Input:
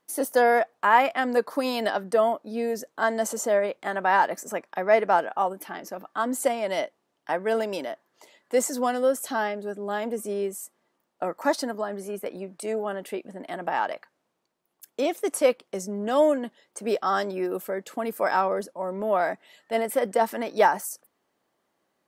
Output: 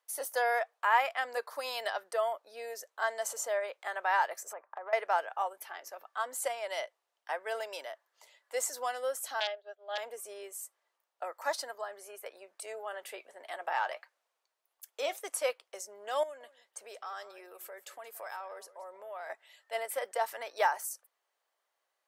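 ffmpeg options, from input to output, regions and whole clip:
ffmpeg -i in.wav -filter_complex "[0:a]asettb=1/sr,asplit=3[link_01][link_02][link_03];[link_01]atrim=end=4.534[link_04];[link_02]atrim=start=4.53:end=4.93,asetpts=PTS-STARTPTS,afade=type=in:duration=0.004:curve=qsin,afade=type=out:start_time=0.396:duration=0.004:curve=qsin,lowpass=frequency=1100:width_type=q:width=1.7,acompressor=threshold=-28dB:ratio=5:attack=3.2:release=140:knee=1:detection=peak[link_05];[link_03]atrim=start=4.926[link_06];[link_04][link_05]acrossfade=duration=0.004:curve1=hsin:curve2=qsin[link_07];[link_07][link_06]acrossfade=duration=0.004:curve1=qsin:curve2=hsin,asettb=1/sr,asplit=3[link_08][link_09][link_10];[link_08]atrim=end=9.404[link_11];[link_09]atrim=start=9.4:end=9.98,asetpts=PTS-STARTPTS,afade=type=in:duration=0.004:curve=qsin,afade=type=out:start_time=0.576:duration=0.004:curve=qsin,aeval=exprs='(mod(7.5*val(0)+1,2)-1)/7.5':channel_layout=same,agate=range=-33dB:threshold=-28dB:ratio=3:release=100:detection=peak,highpass=frequency=440:width=0.5412,highpass=frequency=440:width=1.3066,equalizer=frequency=660:width_type=q:width=4:gain=9,equalizer=frequency=1000:width_type=q:width=4:gain=-8,equalizer=frequency=2300:width_type=q:width=4:gain=-3,equalizer=frequency=3300:width_type=q:width=4:gain=9,lowpass=frequency=4600:width=0.5412,lowpass=frequency=4600:width=1.3066[link_12];[link_10]atrim=start=9.976[link_13];[link_11][link_12]acrossfade=duration=0.004:curve1=hsin:curve2=qsin[link_14];[link_14][link_13]acrossfade=duration=0.004:curve1=qsin:curve2=hsin,asettb=1/sr,asplit=3[link_15][link_16][link_17];[link_15]atrim=end=12.934[link_18];[link_16]atrim=start=12.93:end=15.19,asetpts=PTS-STARTPTS,afade=type=in:duration=0.004:curve=qsin,afade=type=out:start_time=2.256:duration=0.004:curve=qsin,acontrast=71,flanger=delay=3.3:depth=4.8:regen=69:speed=1.6:shape=triangular[link_19];[link_17]atrim=start=15.186[link_20];[link_18][link_19]acrossfade=duration=0.004:curve1=hsin:curve2=qsin[link_21];[link_21][link_20]acrossfade=duration=0.004:curve1=qsin:curve2=hsin,asettb=1/sr,asplit=3[link_22][link_23][link_24];[link_22]atrim=end=16.234[link_25];[link_23]atrim=start=16.23:end=19.3,asetpts=PTS-STARTPTS,afade=type=in:duration=0.004:curve=qsin,afade=type=out:start_time=3.066:duration=0.004:curve=qsin,acompressor=threshold=-33dB:ratio=3:attack=3.2:release=140:knee=1:detection=peak,aecho=1:1:176:0.141,atrim=end_sample=135387[link_26];[link_24]atrim=start=19.296[link_27];[link_25][link_26]acrossfade=duration=0.004:curve1=hsin:curve2=qsin[link_28];[link_28][link_27]acrossfade=duration=0.004:curve1=qsin:curve2=hsin,highpass=frequency=490:width=0.5412,highpass=frequency=490:width=1.3066,tiltshelf=frequency=740:gain=-4,volume=-8.5dB" out.wav

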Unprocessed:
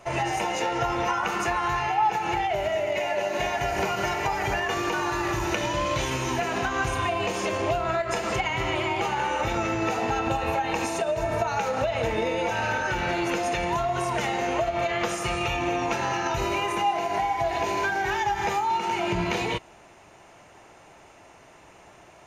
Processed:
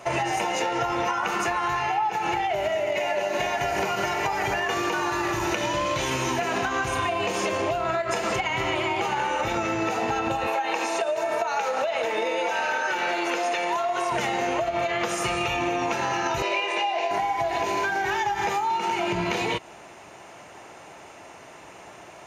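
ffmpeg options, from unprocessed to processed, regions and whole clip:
ffmpeg -i in.wav -filter_complex "[0:a]asettb=1/sr,asplit=3[link_01][link_02][link_03];[link_01]atrim=end=10.474[link_04];[link_02]atrim=start=10.47:end=14.12,asetpts=PTS-STARTPTS,afade=type=in:duration=0.004:curve=qsin,afade=type=out:start_time=3.646:duration=0.004:curve=qsin,acrossover=split=6500[link_05][link_06];[link_06]acompressor=threshold=-49dB:ratio=4:attack=1:release=60[link_07];[link_05][link_07]amix=inputs=2:normalize=0,highpass=390[link_08];[link_03]atrim=start=14.116[link_09];[link_04][link_08]acrossfade=duration=0.004:curve1=hsin:curve2=qsin[link_10];[link_10][link_09]acrossfade=duration=0.004:curve1=qsin:curve2=hsin,asettb=1/sr,asplit=3[link_11][link_12][link_13];[link_11]atrim=end=16.424[link_14];[link_12]atrim=start=16.42:end=17.11,asetpts=PTS-STARTPTS,afade=type=in:duration=0.004:curve=qsin,afade=type=out:start_time=0.686:duration=0.004:curve=qsin,highpass=500,equalizer=frequency=570:width_type=q:width=4:gain=8,equalizer=frequency=1300:width_type=q:width=4:gain=-9,equalizer=frequency=2500:width_type=q:width=4:gain=5,equalizer=frequency=3900:width_type=q:width=4:gain=3,equalizer=frequency=6600:width_type=q:width=4:gain=-6,lowpass=frequency=7200:width=0.5412,lowpass=frequency=7200:width=1.3066,asplit=2[link_15][link_16];[link_16]adelay=18,volume=-7dB[link_17];[link_15][link_17]amix=inputs=2:normalize=0,atrim=end_sample=30429[link_18];[link_13]atrim=start=17.106[link_19];[link_14][link_18]acrossfade=duration=0.004:curve1=hsin:curve2=qsin[link_20];[link_20][link_19]acrossfade=duration=0.004:curve1=qsin:curve2=hsin,highpass=frequency=150:poles=1,acompressor=threshold=-29dB:ratio=6,volume=6.5dB" out.wav

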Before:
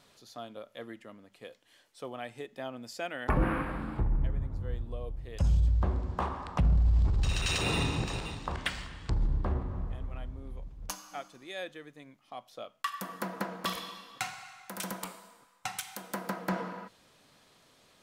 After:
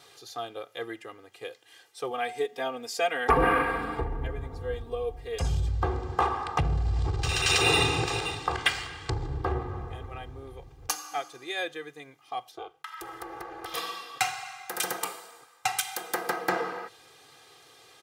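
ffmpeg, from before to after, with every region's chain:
ffmpeg -i in.wav -filter_complex "[0:a]asettb=1/sr,asplit=3[link_01][link_02][link_03];[link_01]atrim=end=2.104[link_04];[link_02]atrim=start=2.1:end=5.47,asetpts=PTS-STARTPTS,afade=type=in:duration=0.004:curve=qsin,afade=type=out:start_time=3.366:duration=0.004:curve=qsin,aecho=1:1:4.3:0.73,atrim=end_sample=148617,bandreject=frequency=182.4:width_type=h:width=4,bandreject=frequency=364.8:width_type=h:width=4,bandreject=frequency=547.2:width_type=h:width=4,bandreject=frequency=729.6:width_type=h:width=4[link_05];[link_03]atrim=start=5.466[link_06];[link_04][link_05]acrossfade=duration=0.004:curve1=hsin:curve2=qsin[link_07];[link_07][link_06]acrossfade=duration=0.004:curve1=qsin:curve2=hsin,asettb=1/sr,asplit=3[link_08][link_09][link_10];[link_08]atrim=end=12.514[link_11];[link_09]atrim=start=12.51:end=13.74,asetpts=PTS-STARTPTS,afade=type=in:duration=0.004:curve=qsin,afade=type=out:start_time=1.226:duration=0.004:curve=qsin,acompressor=threshold=-40dB:ratio=5:attack=3.2:release=140:knee=1:detection=peak,aeval=exprs='val(0)*sin(2*PI*150*n/s)':channel_layout=same,highshelf=frequency=3600:gain=-6.5[link_12];[link_10]atrim=start=13.736[link_13];[link_11][link_12]acrossfade=duration=0.004:curve1=hsin:curve2=qsin[link_14];[link_14][link_13]acrossfade=duration=0.004:curve1=qsin:curve2=hsin,highpass=130,equalizer=frequency=270:width=2.3:gain=-7,aecho=1:1:2.5:0.91,volume=6dB" out.wav

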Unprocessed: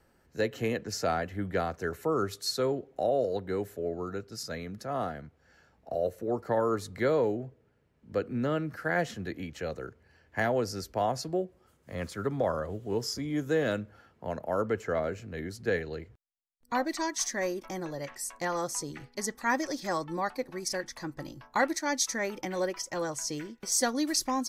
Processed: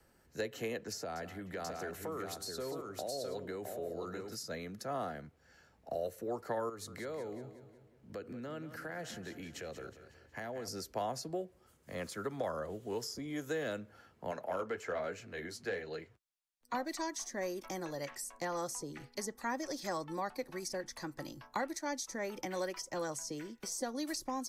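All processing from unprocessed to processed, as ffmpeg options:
ffmpeg -i in.wav -filter_complex "[0:a]asettb=1/sr,asplit=3[link_01][link_02][link_03];[link_01]atrim=end=0.984[link_04];[link_02]atrim=start=0.98:end=4.35,asetpts=PTS-STARTPTS,afade=type=in:duration=0.004:curve=qsin,afade=type=out:start_time=3.366:duration=0.004:curve=qsin,acompressor=threshold=-34dB:ratio=4:attack=3.2:release=140:knee=1:detection=peak,aecho=1:1:177|664|773:0.178|0.562|0.112,atrim=end_sample=148617[link_05];[link_03]atrim=start=4.346[link_06];[link_04][link_05]acrossfade=duration=0.004:curve1=hsin:curve2=qsin[link_07];[link_07][link_06]acrossfade=duration=0.004:curve1=qsin:curve2=hsin,asettb=1/sr,asplit=3[link_08][link_09][link_10];[link_08]atrim=end=6.694[link_11];[link_09]atrim=start=6.69:end=10.68,asetpts=PTS-STARTPTS,afade=type=in:duration=0.004:curve=qsin,afade=type=out:start_time=3.986:duration=0.004:curve=qsin,acompressor=threshold=-39dB:ratio=3:attack=3.2:release=140:knee=1:detection=peak,aecho=1:1:183|366|549|732|915:0.251|0.118|0.0555|0.0261|0.0123,atrim=end_sample=175959[link_12];[link_10]atrim=start=10.676[link_13];[link_11][link_12]acrossfade=duration=0.004:curve1=hsin:curve2=qsin[link_14];[link_14][link_13]acrossfade=duration=0.004:curve1=qsin:curve2=hsin,asettb=1/sr,asplit=3[link_15][link_16][link_17];[link_15]atrim=end=14.314[link_18];[link_16]atrim=start=14.31:end=16.74,asetpts=PTS-STARTPTS,afade=type=in:duration=0.004:curve=qsin,afade=type=out:start_time=2.426:duration=0.004:curve=qsin,flanger=delay=6.6:depth=6.3:regen=-35:speed=1.2:shape=sinusoidal,asplit=2[link_19][link_20];[link_20]highpass=frequency=720:poles=1,volume=11dB,asoftclip=type=tanh:threshold=-18.5dB[link_21];[link_19][link_21]amix=inputs=2:normalize=0,lowpass=frequency=4800:poles=1,volume=-6dB[link_22];[link_17]atrim=start=16.736[link_23];[link_18][link_22]acrossfade=duration=0.004:curve1=hsin:curve2=qsin[link_24];[link_24][link_23]acrossfade=duration=0.004:curve1=qsin:curve2=hsin,equalizer=frequency=11000:width=0.34:gain=5.5,acrossover=split=150|420|930[link_25][link_26][link_27][link_28];[link_25]acompressor=threshold=-55dB:ratio=4[link_29];[link_26]acompressor=threshold=-42dB:ratio=4[link_30];[link_27]acompressor=threshold=-36dB:ratio=4[link_31];[link_28]acompressor=threshold=-40dB:ratio=4[link_32];[link_29][link_30][link_31][link_32]amix=inputs=4:normalize=0,volume=-2.5dB" out.wav

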